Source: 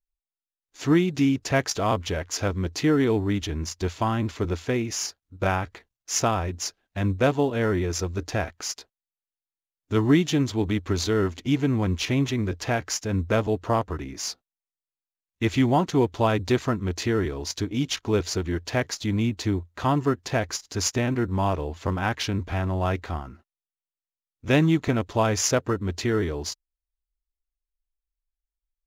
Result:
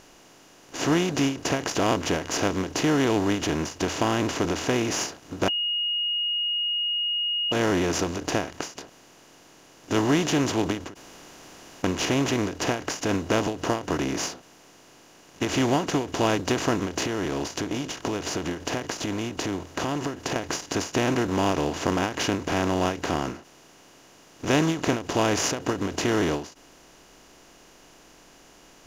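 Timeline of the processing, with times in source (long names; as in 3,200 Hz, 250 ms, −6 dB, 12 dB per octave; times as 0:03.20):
0:05.48–0:07.52: beep over 2,870 Hz −18 dBFS
0:10.94–0:11.84: fill with room tone
0:17.03–0:20.36: downward compressor, threshold −34 dBFS
whole clip: compressor on every frequency bin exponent 0.4; parametric band 76 Hz −5 dB 1.4 octaves; every ending faded ahead of time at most 140 dB per second; level −5.5 dB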